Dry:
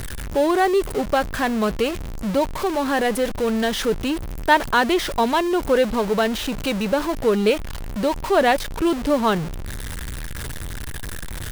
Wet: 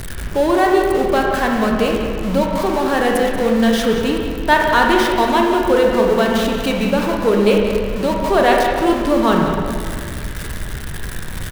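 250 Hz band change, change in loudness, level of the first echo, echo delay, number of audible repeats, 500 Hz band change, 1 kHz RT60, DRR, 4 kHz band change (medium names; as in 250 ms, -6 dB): +5.5 dB, +5.0 dB, -11.0 dB, 183 ms, 1, +5.0 dB, 2.0 s, -0.5 dB, +3.5 dB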